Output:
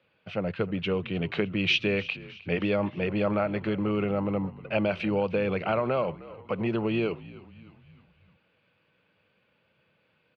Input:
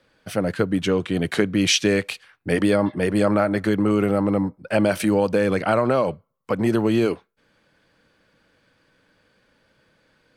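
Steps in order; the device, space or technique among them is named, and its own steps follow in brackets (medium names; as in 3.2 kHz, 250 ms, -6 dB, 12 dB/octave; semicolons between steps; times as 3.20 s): frequency-shifting delay pedal into a guitar cabinet (frequency-shifting echo 308 ms, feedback 53%, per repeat -65 Hz, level -18.5 dB; cabinet simulation 93–3600 Hz, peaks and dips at 93 Hz +4 dB, 160 Hz +3 dB, 280 Hz -7 dB, 1.7 kHz -6 dB, 2.6 kHz +9 dB); trim -6.5 dB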